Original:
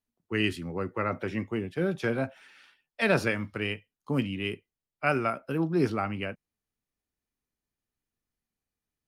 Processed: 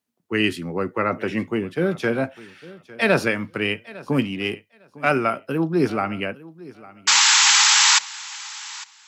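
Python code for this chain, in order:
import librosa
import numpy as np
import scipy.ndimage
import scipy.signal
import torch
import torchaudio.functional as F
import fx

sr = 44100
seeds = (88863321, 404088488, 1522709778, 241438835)

p1 = fx.halfwave_gain(x, sr, db=-3.0, at=(4.24, 5.11))
p2 = scipy.signal.sosfilt(scipy.signal.butter(2, 140.0, 'highpass', fs=sr, output='sos'), p1)
p3 = fx.rider(p2, sr, range_db=10, speed_s=0.5)
p4 = p2 + (p3 * librosa.db_to_amplitude(-2.5))
p5 = fx.spec_paint(p4, sr, seeds[0], shape='noise', start_s=7.07, length_s=0.92, low_hz=790.0, high_hz=7800.0, level_db=-17.0)
p6 = p5 + fx.echo_feedback(p5, sr, ms=854, feedback_pct=17, wet_db=-20, dry=0)
y = p6 * librosa.db_to_amplitude(2.0)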